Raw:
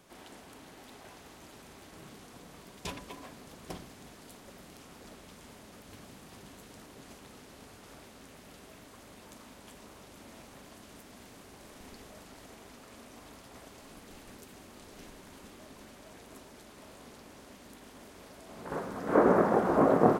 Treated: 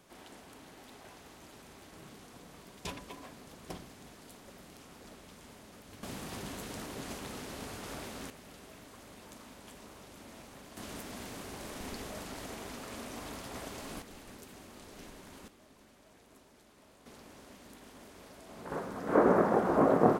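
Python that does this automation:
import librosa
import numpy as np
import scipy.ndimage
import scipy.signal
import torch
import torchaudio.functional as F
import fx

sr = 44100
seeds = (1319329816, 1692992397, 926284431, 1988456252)

y = fx.gain(x, sr, db=fx.steps((0.0, -1.5), (6.03, 9.0), (8.3, 0.0), (10.77, 8.0), (14.02, 0.0), (15.48, -9.0), (17.06, -1.5)))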